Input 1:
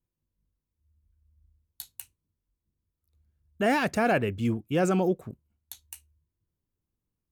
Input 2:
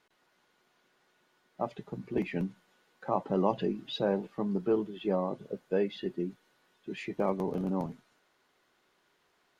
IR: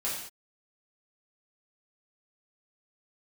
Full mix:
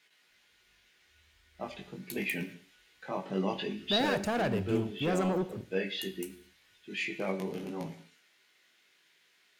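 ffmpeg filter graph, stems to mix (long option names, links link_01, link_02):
-filter_complex "[0:a]asoftclip=type=tanh:threshold=-24dB,adelay=300,volume=-3dB,asplit=2[link_01][link_02];[link_02]volume=-16.5dB[link_03];[1:a]highpass=100,highshelf=frequency=1500:width_type=q:width=1.5:gain=11,flanger=delay=18:depth=3.3:speed=0.76,volume=-3dB,asplit=2[link_04][link_05];[link_05]volume=-12.5dB[link_06];[2:a]atrim=start_sample=2205[link_07];[link_03][link_06]amix=inputs=2:normalize=0[link_08];[link_08][link_07]afir=irnorm=-1:irlink=0[link_09];[link_01][link_04][link_09]amix=inputs=3:normalize=0"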